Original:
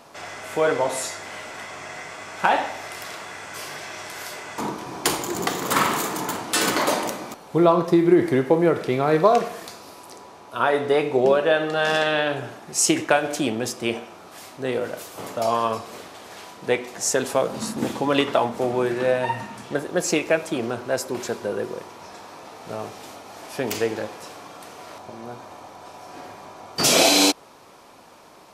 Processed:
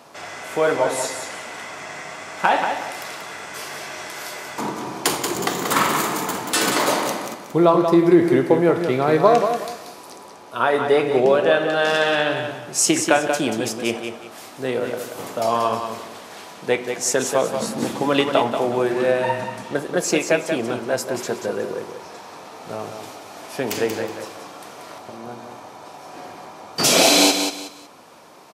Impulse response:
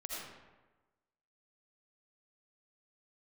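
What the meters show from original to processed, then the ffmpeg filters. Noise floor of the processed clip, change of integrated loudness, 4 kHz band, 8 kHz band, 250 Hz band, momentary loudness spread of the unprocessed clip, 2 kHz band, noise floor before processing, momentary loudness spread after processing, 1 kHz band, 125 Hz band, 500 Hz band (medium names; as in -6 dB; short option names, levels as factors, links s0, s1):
-41 dBFS, +2.0 dB, +2.5 dB, +2.5 dB, +2.5 dB, 22 LU, +2.5 dB, -45 dBFS, 21 LU, +2.5 dB, +1.5 dB, +2.5 dB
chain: -af "highpass=95,aecho=1:1:184|368|552:0.447|0.125|0.035,volume=1.19"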